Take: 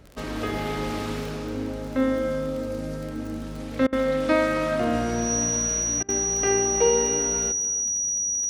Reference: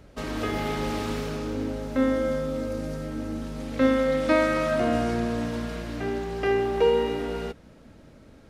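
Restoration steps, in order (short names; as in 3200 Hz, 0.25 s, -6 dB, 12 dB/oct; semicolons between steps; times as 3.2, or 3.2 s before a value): de-click; notch 5800 Hz, Q 30; interpolate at 3.87/6.03, 55 ms; inverse comb 0.32 s -16.5 dB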